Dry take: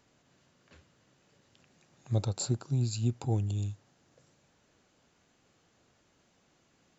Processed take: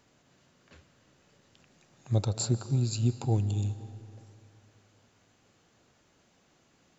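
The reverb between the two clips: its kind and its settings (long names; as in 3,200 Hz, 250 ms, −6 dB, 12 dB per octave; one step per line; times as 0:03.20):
comb and all-pass reverb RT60 2.6 s, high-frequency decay 0.7×, pre-delay 110 ms, DRR 13.5 dB
level +2.5 dB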